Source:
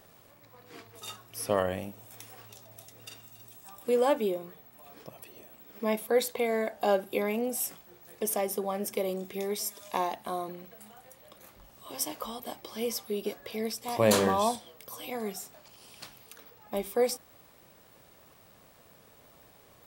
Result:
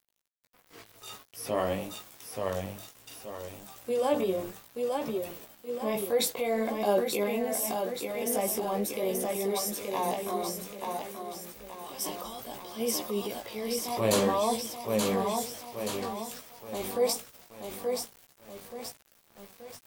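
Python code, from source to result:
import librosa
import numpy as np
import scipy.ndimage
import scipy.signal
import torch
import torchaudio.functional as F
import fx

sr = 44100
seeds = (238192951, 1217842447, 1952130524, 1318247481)

p1 = fx.dynamic_eq(x, sr, hz=1600.0, q=2.3, threshold_db=-49.0, ratio=4.0, max_db=-5)
p2 = p1 + fx.echo_feedback(p1, sr, ms=878, feedback_pct=50, wet_db=-5.0, dry=0)
p3 = np.where(np.abs(p2) >= 10.0 ** (-47.0 / 20.0), p2, 0.0)
p4 = fx.level_steps(p3, sr, step_db=17)
p5 = p3 + (p4 * 10.0 ** (-3.0 / 20.0))
p6 = fx.transient(p5, sr, attack_db=-3, sustain_db=6)
y = fx.chorus_voices(p6, sr, voices=2, hz=0.58, base_ms=17, depth_ms=4.2, mix_pct=40)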